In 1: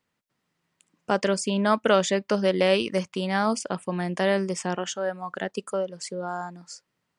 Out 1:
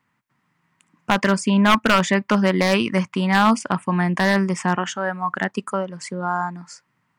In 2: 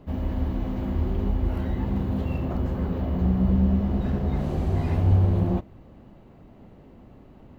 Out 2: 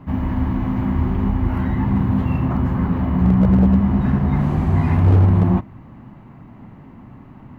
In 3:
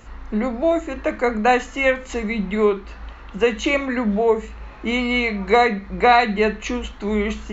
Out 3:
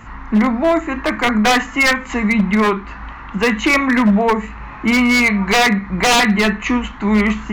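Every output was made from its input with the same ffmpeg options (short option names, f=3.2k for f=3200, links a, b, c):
-af "equalizer=f=125:t=o:w=1:g=10,equalizer=f=250:t=o:w=1:g=7,equalizer=f=500:t=o:w=1:g=-6,equalizer=f=1k:t=o:w=1:g=11,equalizer=f=2k:t=o:w=1:g=8,equalizer=f=4k:t=o:w=1:g=-3,aeval=exprs='0.398*(abs(mod(val(0)/0.398+3,4)-2)-1)':c=same,volume=1dB"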